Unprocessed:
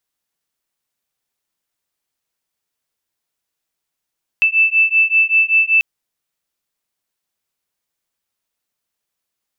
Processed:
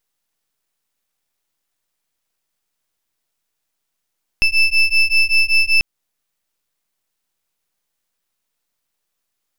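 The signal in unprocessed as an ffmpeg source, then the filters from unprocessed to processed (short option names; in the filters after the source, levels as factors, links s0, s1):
-f lavfi -i "aevalsrc='0.2*(sin(2*PI*2640*t)+sin(2*PI*2645.2*t))':d=1.39:s=44100"
-filter_complex "[0:a]aeval=exprs='max(val(0),0)':c=same,asplit=2[s0][s1];[s1]alimiter=limit=0.119:level=0:latency=1:release=273,volume=1.26[s2];[s0][s2]amix=inputs=2:normalize=0"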